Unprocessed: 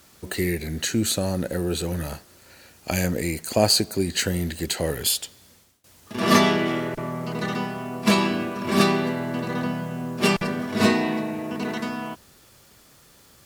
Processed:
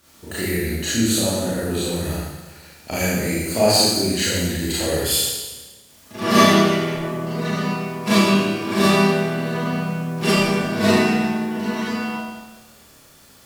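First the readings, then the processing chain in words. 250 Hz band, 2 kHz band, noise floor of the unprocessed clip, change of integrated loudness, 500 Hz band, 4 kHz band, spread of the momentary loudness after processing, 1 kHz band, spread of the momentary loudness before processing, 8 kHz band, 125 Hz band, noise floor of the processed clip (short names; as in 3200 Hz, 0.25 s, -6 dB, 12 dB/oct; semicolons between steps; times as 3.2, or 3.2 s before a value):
+4.5 dB, +4.0 dB, -54 dBFS, +4.0 dB, +4.5 dB, +4.5 dB, 12 LU, +4.0 dB, 11 LU, +4.5 dB, +4.0 dB, -50 dBFS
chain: Schroeder reverb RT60 1.2 s, combs from 27 ms, DRR -9.5 dB; gain -5.5 dB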